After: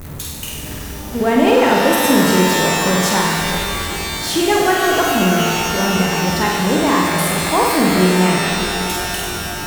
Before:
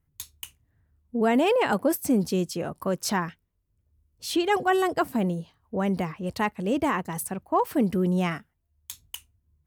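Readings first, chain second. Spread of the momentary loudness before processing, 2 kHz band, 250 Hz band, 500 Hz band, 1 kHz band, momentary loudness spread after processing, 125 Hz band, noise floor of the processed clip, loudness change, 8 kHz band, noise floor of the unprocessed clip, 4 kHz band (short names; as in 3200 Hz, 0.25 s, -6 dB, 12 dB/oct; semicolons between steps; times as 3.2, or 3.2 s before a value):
17 LU, +15.0 dB, +10.0 dB, +10.0 dB, +11.5 dB, 9 LU, +11.0 dB, -29 dBFS, +10.5 dB, +16.5 dB, -74 dBFS, +18.0 dB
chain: zero-crossing step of -30 dBFS; flutter echo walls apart 8.4 m, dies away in 0.82 s; shimmer reverb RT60 3.3 s, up +12 st, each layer -2 dB, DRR 3 dB; gain +3.5 dB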